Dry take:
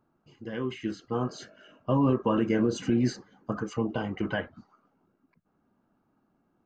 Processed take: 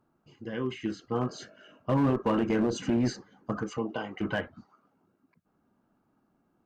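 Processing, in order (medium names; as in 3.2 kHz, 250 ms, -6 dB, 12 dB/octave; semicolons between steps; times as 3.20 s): 3.77–4.20 s: high-pass 280 Hz -> 630 Hz 6 dB/octave; one-sided clip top -21.5 dBFS, bottom -17.5 dBFS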